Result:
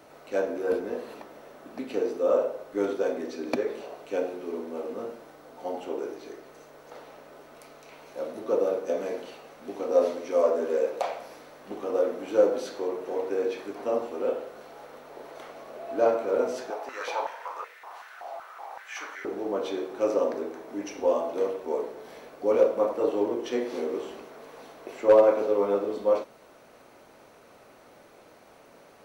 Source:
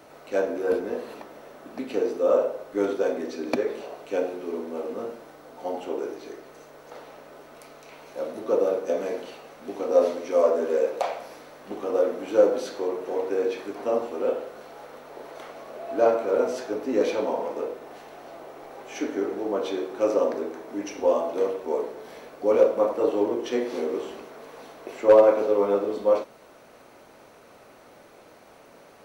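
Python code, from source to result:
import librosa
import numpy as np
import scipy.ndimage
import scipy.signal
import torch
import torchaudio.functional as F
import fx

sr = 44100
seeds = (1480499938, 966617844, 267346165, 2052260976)

y = fx.filter_held_highpass(x, sr, hz=5.3, low_hz=760.0, high_hz=1900.0, at=(16.7, 19.25))
y = y * librosa.db_to_amplitude(-2.5)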